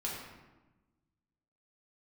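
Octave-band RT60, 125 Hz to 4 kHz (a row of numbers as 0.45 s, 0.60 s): 1.7 s, 1.6 s, 1.1 s, 1.1 s, 0.95 s, 0.75 s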